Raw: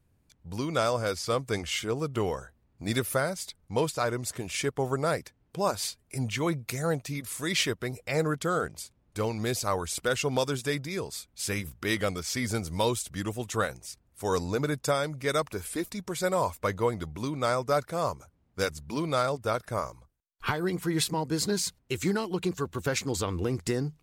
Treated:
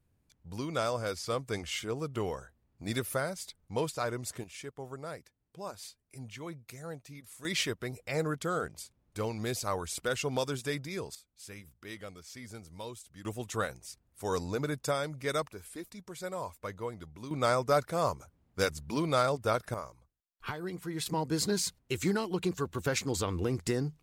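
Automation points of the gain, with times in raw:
-5 dB
from 4.44 s -14 dB
from 7.45 s -4.5 dB
from 11.15 s -16 dB
from 13.25 s -4.5 dB
from 15.48 s -11 dB
from 17.31 s -0.5 dB
from 19.74 s -9 dB
from 21.06 s -2 dB

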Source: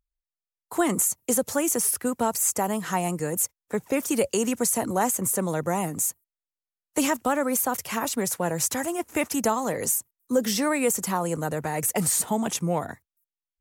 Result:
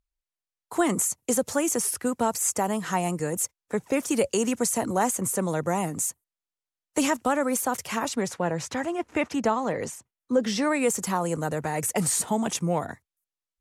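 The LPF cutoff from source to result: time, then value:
7.9 s 9800 Hz
8.46 s 3900 Hz
10.37 s 3900 Hz
10.97 s 10000 Hz

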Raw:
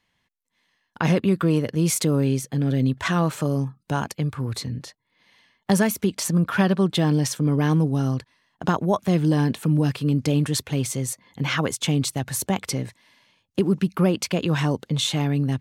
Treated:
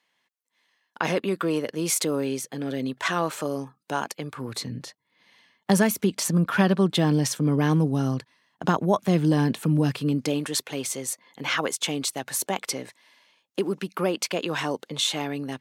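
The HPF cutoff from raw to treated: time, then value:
4.2 s 340 Hz
4.81 s 140 Hz
9.96 s 140 Hz
10.44 s 360 Hz

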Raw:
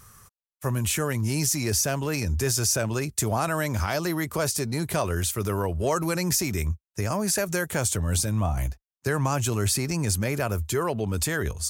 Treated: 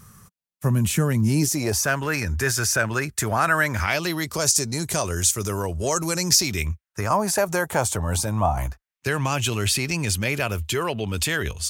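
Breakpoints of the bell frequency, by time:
bell +12.5 dB 1.1 oct
1.31 s 180 Hz
1.92 s 1600 Hz
3.71 s 1600 Hz
4.46 s 6600 Hz
6.21 s 6600 Hz
7.19 s 850 Hz
8.56 s 850 Hz
9.1 s 2900 Hz

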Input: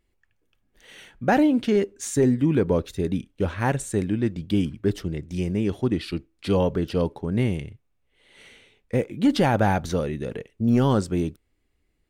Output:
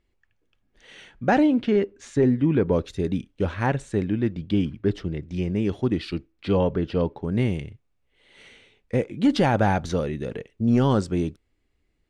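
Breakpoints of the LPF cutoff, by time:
6300 Hz
from 1.54 s 3300 Hz
from 2.73 s 7000 Hz
from 3.66 s 4100 Hz
from 5.56 s 6400 Hz
from 6.32 s 3500 Hz
from 7.22 s 7500 Hz

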